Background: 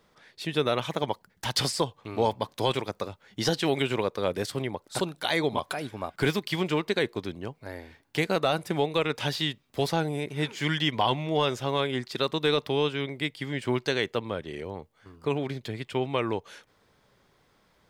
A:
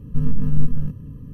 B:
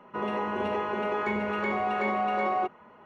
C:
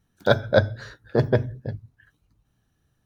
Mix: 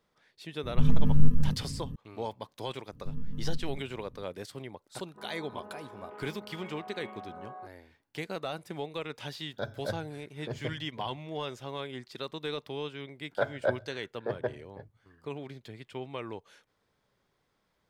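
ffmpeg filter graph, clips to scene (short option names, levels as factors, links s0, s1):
-filter_complex "[1:a]asplit=2[s0][s1];[3:a]asplit=2[s2][s3];[0:a]volume=0.282[s4];[2:a]afwtdn=0.0282[s5];[s3]acrossover=split=390 2300:gain=0.224 1 0.178[s6][s7][s8];[s6][s7][s8]amix=inputs=3:normalize=0[s9];[s0]atrim=end=1.33,asetpts=PTS-STARTPTS,volume=0.75,afade=t=in:d=0.004:c=hsin,afade=t=out:st=1.326:d=0.004:c=hsin,adelay=630[s10];[s1]atrim=end=1.33,asetpts=PTS-STARTPTS,volume=0.15,afade=t=in:d=0.004:c=hsin,afade=t=out:st=1.326:d=0.004:c=hsin,adelay=2910[s11];[s5]atrim=end=3.05,asetpts=PTS-STARTPTS,volume=0.133,afade=t=in:d=0.004:c=hsin,afade=t=out:st=3.046:d=0.004:c=hsin,adelay=5000[s12];[s2]atrim=end=3.05,asetpts=PTS-STARTPTS,volume=0.133,afade=t=in:d=0.004:c=hsin,afade=t=out:st=3.046:d=0.004:c=hsin,adelay=9320[s13];[s9]atrim=end=3.05,asetpts=PTS-STARTPTS,volume=0.376,afade=t=in:d=0.004:c=hsin,afade=t=out:st=3.046:d=0.004:c=hsin,adelay=13110[s14];[s4][s10][s11][s12][s13][s14]amix=inputs=6:normalize=0"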